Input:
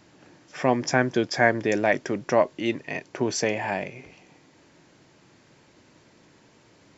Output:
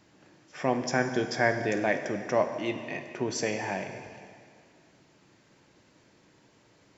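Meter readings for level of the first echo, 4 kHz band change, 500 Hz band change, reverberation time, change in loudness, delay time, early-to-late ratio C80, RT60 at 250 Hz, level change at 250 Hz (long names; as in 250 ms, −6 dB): no echo audible, −4.5 dB, −4.5 dB, 2.1 s, −4.5 dB, no echo audible, 9.0 dB, 2.2 s, −5.0 dB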